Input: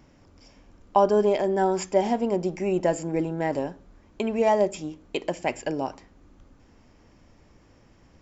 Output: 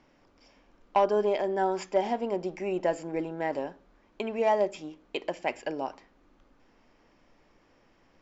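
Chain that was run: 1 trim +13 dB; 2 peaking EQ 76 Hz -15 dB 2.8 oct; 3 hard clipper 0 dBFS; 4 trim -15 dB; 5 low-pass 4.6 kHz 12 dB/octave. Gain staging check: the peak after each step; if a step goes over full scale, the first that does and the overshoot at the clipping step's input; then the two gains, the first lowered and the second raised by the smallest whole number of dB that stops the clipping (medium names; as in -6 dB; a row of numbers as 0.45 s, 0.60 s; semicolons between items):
+5.5 dBFS, +4.5 dBFS, 0.0 dBFS, -15.0 dBFS, -14.5 dBFS; step 1, 4.5 dB; step 1 +8 dB, step 4 -10 dB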